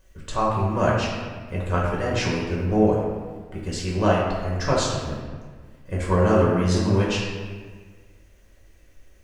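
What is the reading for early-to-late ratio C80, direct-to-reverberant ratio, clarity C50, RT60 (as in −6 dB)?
2.5 dB, −5.0 dB, 0.5 dB, 1.6 s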